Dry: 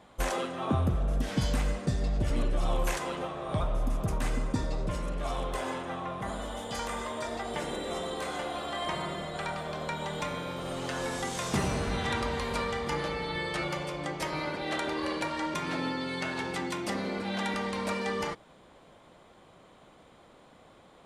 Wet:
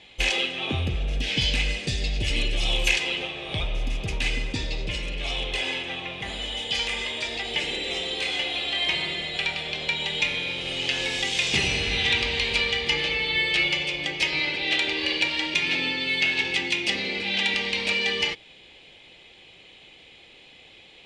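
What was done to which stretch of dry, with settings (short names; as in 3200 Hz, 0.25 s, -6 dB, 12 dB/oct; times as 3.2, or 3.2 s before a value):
1.69–2.87 high shelf 8200 Hz -> 4800 Hz +10.5 dB
whole clip: LPF 4600 Hz 12 dB/oct; resonant high shelf 1800 Hz +12.5 dB, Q 3; comb 2.4 ms, depth 32%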